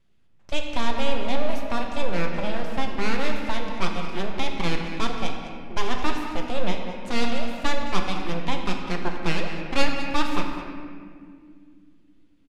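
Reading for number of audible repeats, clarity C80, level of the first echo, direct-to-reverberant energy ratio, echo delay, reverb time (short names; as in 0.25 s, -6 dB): 1, 4.0 dB, -13.0 dB, 1.0 dB, 0.205 s, 2.2 s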